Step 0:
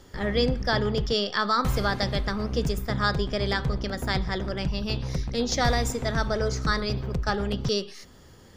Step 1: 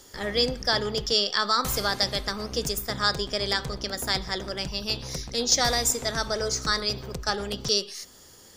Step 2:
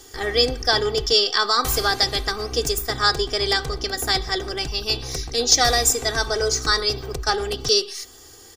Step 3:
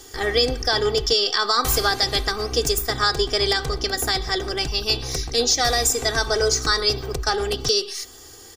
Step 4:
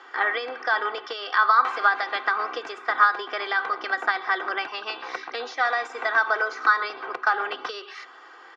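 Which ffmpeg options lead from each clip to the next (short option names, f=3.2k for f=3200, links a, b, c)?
-af "bass=f=250:g=-8,treble=f=4k:g=13,volume=-1dB"
-af "aecho=1:1:2.6:0.73,volume=3.5dB"
-af "alimiter=limit=-10dB:level=0:latency=1:release=112,volume=2dB"
-af "acompressor=threshold=-21dB:ratio=6,crystalizer=i=5:c=0,highpass=f=380:w=0.5412,highpass=f=380:w=1.3066,equalizer=f=430:t=q:w=4:g=-10,equalizer=f=1k:t=q:w=4:g=9,equalizer=f=1.4k:t=q:w=4:g=9,lowpass=f=2.2k:w=0.5412,lowpass=f=2.2k:w=1.3066"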